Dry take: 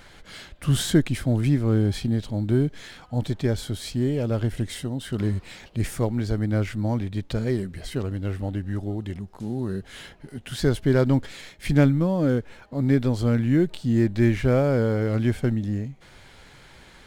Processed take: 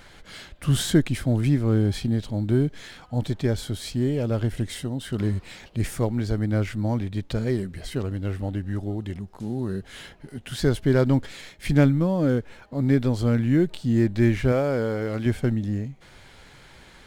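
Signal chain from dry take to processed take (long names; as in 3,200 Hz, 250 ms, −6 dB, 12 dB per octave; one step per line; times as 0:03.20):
0:14.52–0:15.26: low-shelf EQ 210 Hz −9 dB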